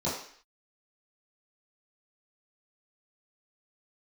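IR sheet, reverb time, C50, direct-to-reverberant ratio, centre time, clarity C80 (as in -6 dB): 0.55 s, 4.0 dB, -11.0 dB, 43 ms, 7.5 dB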